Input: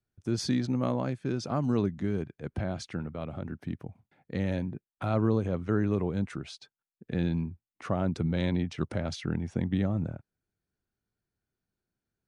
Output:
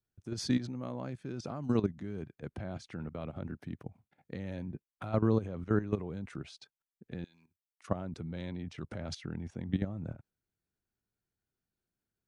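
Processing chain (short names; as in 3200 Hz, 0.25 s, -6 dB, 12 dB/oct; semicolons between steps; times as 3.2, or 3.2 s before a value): 7.24–7.88 differentiator; level quantiser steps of 13 dB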